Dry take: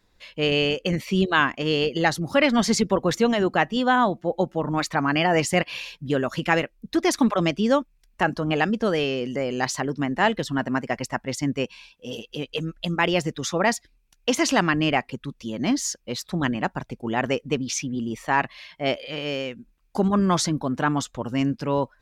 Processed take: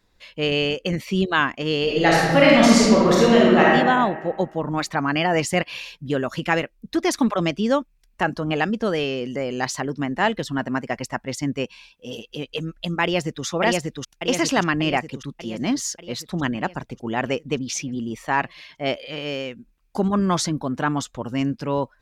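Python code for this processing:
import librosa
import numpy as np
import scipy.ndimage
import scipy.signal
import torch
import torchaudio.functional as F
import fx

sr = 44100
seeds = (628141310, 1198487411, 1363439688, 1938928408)

y = fx.reverb_throw(x, sr, start_s=1.83, length_s=1.81, rt60_s=1.6, drr_db=-5.5)
y = fx.echo_throw(y, sr, start_s=13.03, length_s=0.42, ms=590, feedback_pct=60, wet_db=-1.5)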